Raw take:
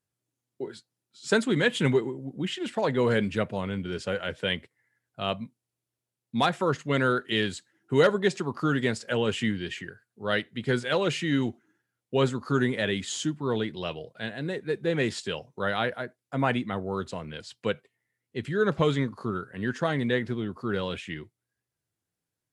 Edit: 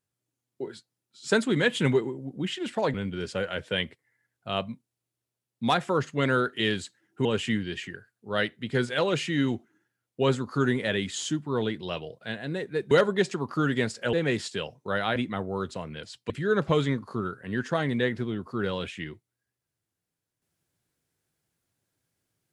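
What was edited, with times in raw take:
0:02.94–0:03.66: remove
0:07.97–0:09.19: move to 0:14.85
0:15.88–0:16.53: remove
0:17.67–0:18.40: remove

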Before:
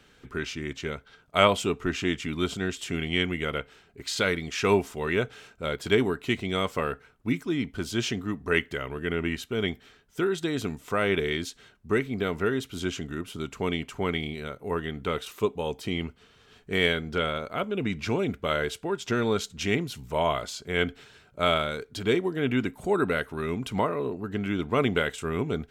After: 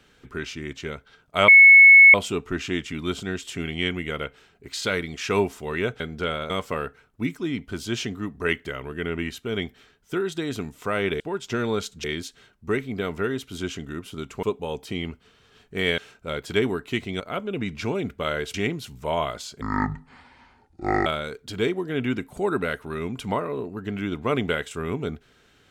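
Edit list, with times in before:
0:01.48: insert tone 2,200 Hz −6.5 dBFS 0.66 s
0:05.34–0:06.56: swap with 0:16.94–0:17.44
0:13.65–0:15.39: remove
0:18.78–0:19.62: move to 0:11.26
0:20.69–0:21.53: play speed 58%

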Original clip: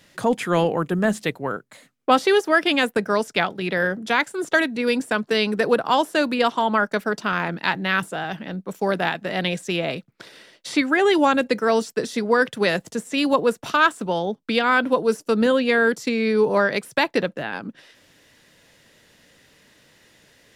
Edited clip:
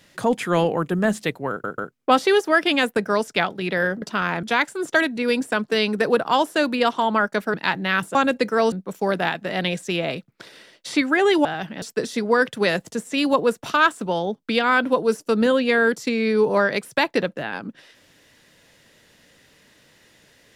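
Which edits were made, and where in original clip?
0:01.50: stutter in place 0.14 s, 3 plays
0:07.13–0:07.54: move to 0:04.02
0:08.15–0:08.52: swap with 0:11.25–0:11.82

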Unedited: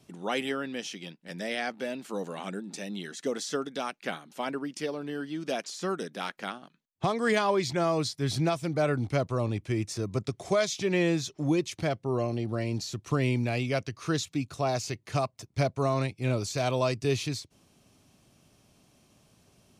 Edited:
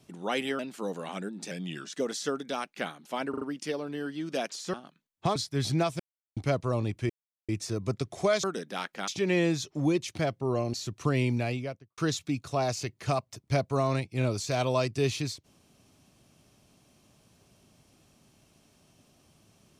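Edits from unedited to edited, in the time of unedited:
0:00.59–0:01.90: remove
0:02.82–0:03.19: play speed 89%
0:04.56: stutter 0.04 s, 4 plays
0:05.88–0:06.52: move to 0:10.71
0:07.14–0:08.02: remove
0:08.66–0:09.03: silence
0:09.76: splice in silence 0.39 s
0:12.37–0:12.80: remove
0:13.42–0:14.04: fade out and dull

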